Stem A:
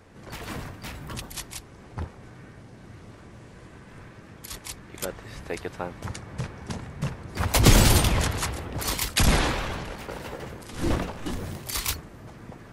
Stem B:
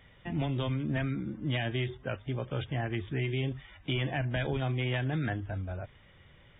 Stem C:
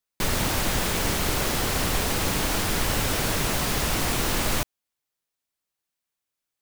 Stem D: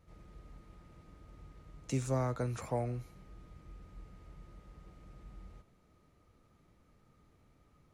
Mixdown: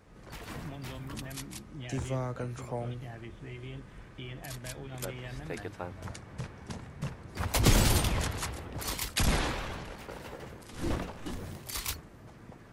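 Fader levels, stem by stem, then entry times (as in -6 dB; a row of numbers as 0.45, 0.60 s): -7.0 dB, -12.0 dB, off, -1.5 dB; 0.00 s, 0.30 s, off, 0.00 s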